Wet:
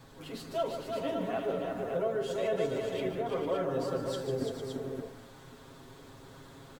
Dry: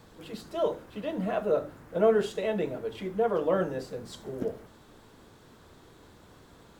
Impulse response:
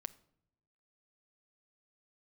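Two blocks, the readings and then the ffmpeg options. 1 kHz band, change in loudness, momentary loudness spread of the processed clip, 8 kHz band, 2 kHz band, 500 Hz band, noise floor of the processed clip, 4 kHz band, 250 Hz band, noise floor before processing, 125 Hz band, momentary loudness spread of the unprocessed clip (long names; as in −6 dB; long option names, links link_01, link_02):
−2.5 dB, −4.0 dB, 20 LU, can't be measured, −2.5 dB, −3.5 dB, −53 dBFS, +1.0 dB, −3.0 dB, −56 dBFS, −1.0 dB, 15 LU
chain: -af "acompressor=threshold=-30dB:ratio=6,aecho=1:1:7.4:0.94,aecho=1:1:147|339|453|568:0.355|0.562|0.355|0.501,volume=-2dB"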